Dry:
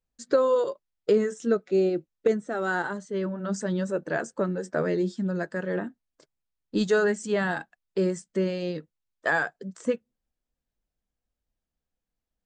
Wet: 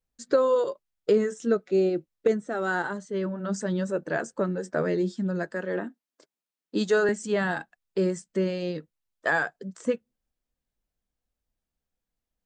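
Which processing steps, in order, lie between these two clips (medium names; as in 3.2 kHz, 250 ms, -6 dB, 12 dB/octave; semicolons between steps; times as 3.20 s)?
5.51–7.09 s: high-pass 200 Hz 24 dB/octave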